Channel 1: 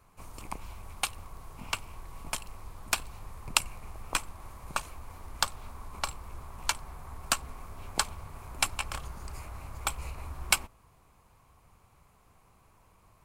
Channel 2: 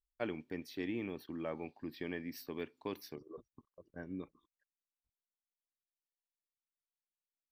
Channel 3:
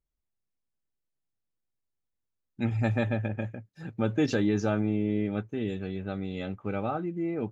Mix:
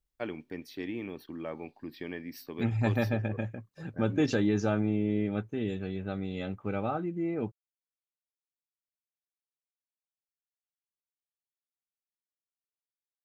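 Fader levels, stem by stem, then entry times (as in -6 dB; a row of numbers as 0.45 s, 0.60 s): mute, +2.0 dB, -1.0 dB; mute, 0.00 s, 0.00 s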